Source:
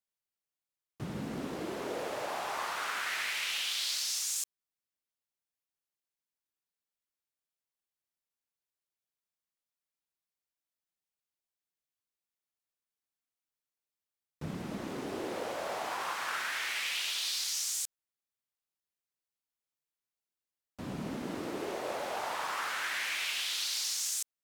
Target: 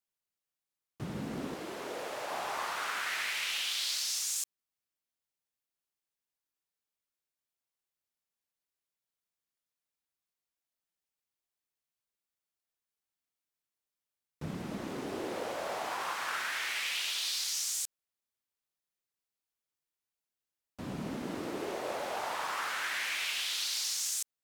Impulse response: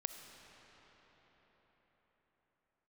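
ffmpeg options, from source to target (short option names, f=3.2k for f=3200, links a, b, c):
-filter_complex "[0:a]asettb=1/sr,asplit=3[a][b][c];[a]atrim=end=1.544[d];[b]atrim=start=1.54:end=2.31,asetpts=PTS-STARTPTS,afade=t=in:d=0.004:c=qsin,afade=t=out:st=0.766:d=0.004:c=qsin,lowshelf=f=450:g=-7.5[e];[c]atrim=start=2.306[f];[d][e]acrossfade=d=0.004:c1=hsin:c2=qsin[g];[g][f]acrossfade=d=0.004:c1=qsin:c2=hsin"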